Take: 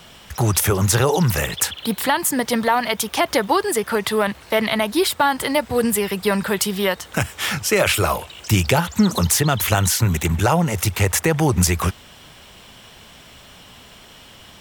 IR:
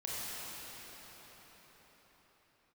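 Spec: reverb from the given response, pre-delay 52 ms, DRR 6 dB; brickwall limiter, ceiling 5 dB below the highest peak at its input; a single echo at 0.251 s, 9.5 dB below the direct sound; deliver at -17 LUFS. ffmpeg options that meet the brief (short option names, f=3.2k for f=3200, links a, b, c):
-filter_complex "[0:a]alimiter=limit=-9.5dB:level=0:latency=1,aecho=1:1:251:0.335,asplit=2[a][b];[1:a]atrim=start_sample=2205,adelay=52[c];[b][c]afir=irnorm=-1:irlink=0,volume=-10dB[d];[a][d]amix=inputs=2:normalize=0,volume=2.5dB"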